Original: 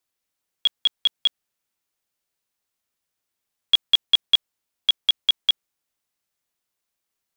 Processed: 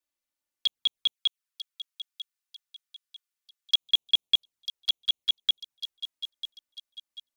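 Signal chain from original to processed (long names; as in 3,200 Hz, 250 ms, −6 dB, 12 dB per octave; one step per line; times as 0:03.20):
0:01.12–0:03.81: high-pass filter 1,100 Hz 24 dB per octave
flanger swept by the level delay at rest 3.4 ms, full sweep at −20 dBFS
delay with a high-pass on its return 945 ms, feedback 39%, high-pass 4,900 Hz, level −5.5 dB
level −4.5 dB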